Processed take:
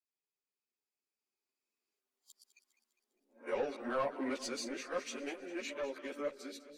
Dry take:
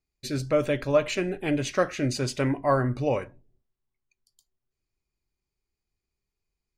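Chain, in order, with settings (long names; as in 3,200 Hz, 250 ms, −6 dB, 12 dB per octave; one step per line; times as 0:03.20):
played backwards from end to start
source passing by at 0:02.59, 12 m/s, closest 4.5 metres
elliptic high-pass filter 230 Hz, stop band 40 dB
low-shelf EQ 440 Hz −5 dB
in parallel at −1.5 dB: brickwall limiter −34 dBFS, peak gain reduction 9 dB
on the sum: soft clipping −31 dBFS, distortion −14 dB
on a send: echo with a time of its own for lows and highs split 450 Hz, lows 468 ms, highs 202 ms, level −13.5 dB
on the sum: string-ensemble chorus
level +5 dB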